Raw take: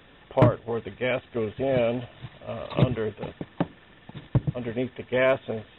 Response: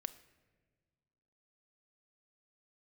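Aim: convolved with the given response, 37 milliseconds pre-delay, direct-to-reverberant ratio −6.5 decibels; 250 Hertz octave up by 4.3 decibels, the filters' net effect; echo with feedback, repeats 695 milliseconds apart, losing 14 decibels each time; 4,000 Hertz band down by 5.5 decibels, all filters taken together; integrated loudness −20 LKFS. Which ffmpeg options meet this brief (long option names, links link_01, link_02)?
-filter_complex "[0:a]equalizer=frequency=250:width_type=o:gain=5.5,equalizer=frequency=4000:width_type=o:gain=-8.5,aecho=1:1:695|1390:0.2|0.0399,asplit=2[link_01][link_02];[1:a]atrim=start_sample=2205,adelay=37[link_03];[link_02][link_03]afir=irnorm=-1:irlink=0,volume=9dB[link_04];[link_01][link_04]amix=inputs=2:normalize=0,volume=-2dB"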